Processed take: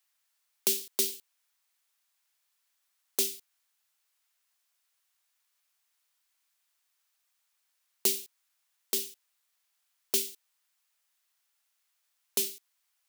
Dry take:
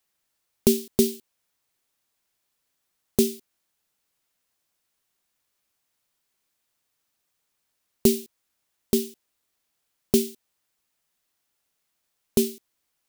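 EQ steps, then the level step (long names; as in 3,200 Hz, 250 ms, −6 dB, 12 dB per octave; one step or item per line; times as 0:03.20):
high-pass filter 960 Hz 12 dB per octave
0.0 dB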